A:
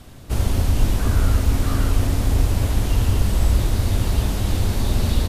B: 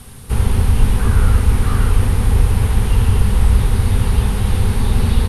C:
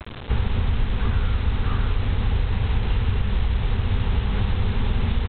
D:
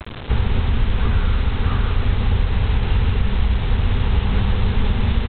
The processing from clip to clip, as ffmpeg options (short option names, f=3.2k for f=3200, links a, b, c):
-filter_complex "[0:a]acrossover=split=3500[a][b];[b]acompressor=threshold=-47dB:ratio=4:attack=1:release=60[c];[a][c]amix=inputs=2:normalize=0,superequalizer=6b=0.316:8b=0.355:16b=3.55,volume=5dB"
-af "acompressor=threshold=-17dB:ratio=10,aresample=8000,acrusher=bits=5:mix=0:aa=0.000001,aresample=44100"
-af "aecho=1:1:187:0.398,volume=3.5dB"